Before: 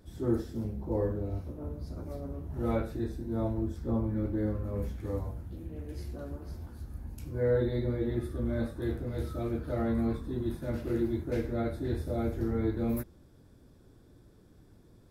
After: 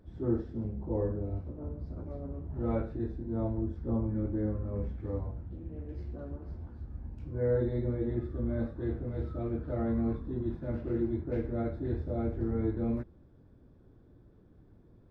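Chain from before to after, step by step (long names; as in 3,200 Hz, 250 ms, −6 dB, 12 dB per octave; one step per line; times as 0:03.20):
head-to-tape spacing loss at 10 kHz 35 dB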